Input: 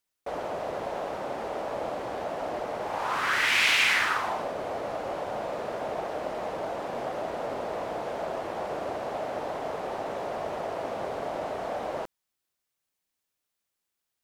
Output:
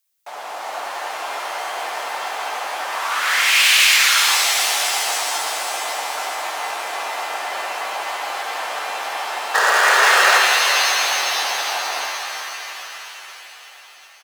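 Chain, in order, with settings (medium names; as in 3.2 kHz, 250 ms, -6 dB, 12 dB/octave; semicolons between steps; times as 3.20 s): level rider gain up to 4 dB; painted sound noise, 9.54–10.38 s, 230–1800 Hz -13 dBFS; in parallel at -4 dB: wavefolder -19 dBFS; on the sum: tilt EQ +3 dB/octave; on a send: feedback delay 1001 ms, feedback 49%, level -22 dB; on the sum: frequency shift +140 Hz; bass shelf 260 Hz -9 dB; pitch-shifted reverb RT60 3.6 s, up +7 st, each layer -2 dB, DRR 1 dB; trim -3.5 dB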